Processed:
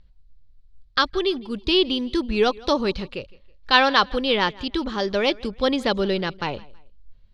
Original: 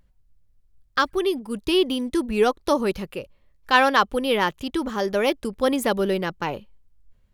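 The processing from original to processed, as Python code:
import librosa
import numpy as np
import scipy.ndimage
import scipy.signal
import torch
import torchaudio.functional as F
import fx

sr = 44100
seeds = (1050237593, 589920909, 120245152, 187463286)

y = fx.lowpass_res(x, sr, hz=4200.0, q=3.2)
y = fx.low_shelf(y, sr, hz=80.0, db=10.5)
y = fx.echo_feedback(y, sr, ms=162, feedback_pct=34, wet_db=-23.0)
y = y * 10.0 ** (-1.0 / 20.0)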